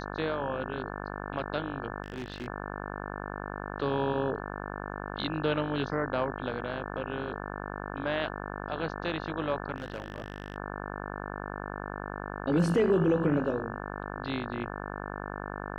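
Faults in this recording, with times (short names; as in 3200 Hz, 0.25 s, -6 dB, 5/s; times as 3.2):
buzz 50 Hz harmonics 35 -38 dBFS
2.02–2.48 clipped -32 dBFS
9.76–10.56 clipped -30.5 dBFS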